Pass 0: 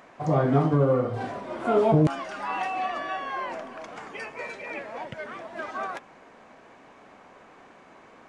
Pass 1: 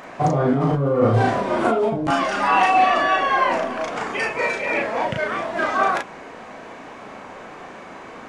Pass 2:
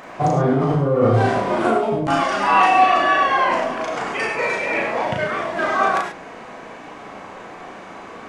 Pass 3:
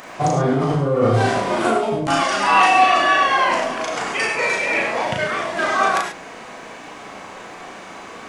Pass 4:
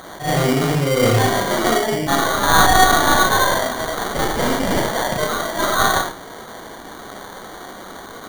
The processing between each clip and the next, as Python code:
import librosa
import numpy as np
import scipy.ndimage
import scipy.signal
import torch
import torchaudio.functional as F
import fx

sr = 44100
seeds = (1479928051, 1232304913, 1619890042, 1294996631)

y1 = fx.over_compress(x, sr, threshold_db=-27.0, ratio=-1.0)
y1 = fx.doubler(y1, sr, ms=36.0, db=-2.0)
y1 = F.gain(torch.from_numpy(y1), 8.0).numpy()
y2 = fx.rev_gated(y1, sr, seeds[0], gate_ms=120, shape='rising', drr_db=4.0)
y3 = fx.high_shelf(y2, sr, hz=2900.0, db=11.0)
y3 = F.gain(torch.from_numpy(y3), -1.0).numpy()
y4 = fx.tracing_dist(y3, sr, depth_ms=0.28)
y4 = fx.sample_hold(y4, sr, seeds[1], rate_hz=2600.0, jitter_pct=0)
y4 = fx.attack_slew(y4, sr, db_per_s=160.0)
y4 = F.gain(torch.from_numpy(y4), 1.0).numpy()